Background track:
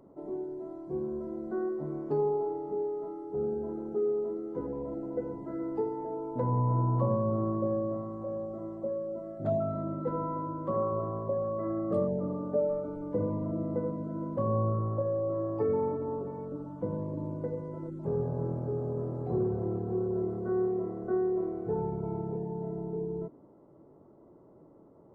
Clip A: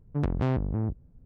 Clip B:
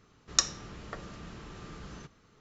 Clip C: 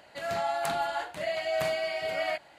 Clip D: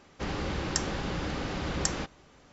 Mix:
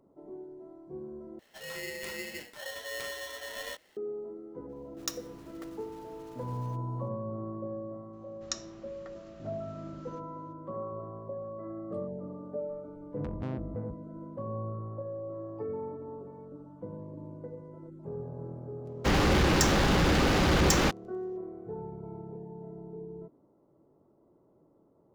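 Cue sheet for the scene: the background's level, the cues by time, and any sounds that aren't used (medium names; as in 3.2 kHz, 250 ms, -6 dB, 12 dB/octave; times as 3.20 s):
background track -8 dB
1.39 s: replace with C -9.5 dB + polarity switched at an audio rate 1.2 kHz
4.69 s: add B -11.5 dB + block-companded coder 3-bit
8.13 s: add B -11 dB
13.01 s: add A -11 dB
18.85 s: add D -7.5 dB + waveshaping leveller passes 5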